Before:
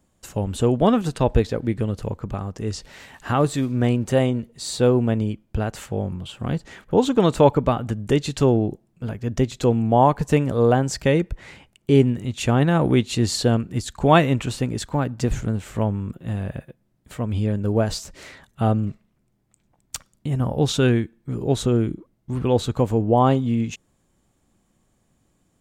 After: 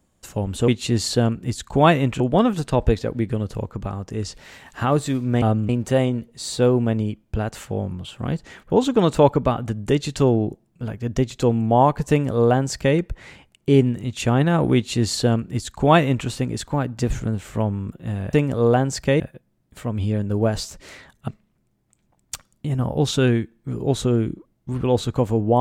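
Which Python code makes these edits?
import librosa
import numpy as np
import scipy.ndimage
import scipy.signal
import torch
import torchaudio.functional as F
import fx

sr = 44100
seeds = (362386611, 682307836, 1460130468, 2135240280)

y = fx.edit(x, sr, fx.duplicate(start_s=10.31, length_s=0.87, to_s=16.54),
    fx.duplicate(start_s=12.96, length_s=1.52, to_s=0.68),
    fx.move(start_s=18.62, length_s=0.27, to_s=3.9), tone=tone)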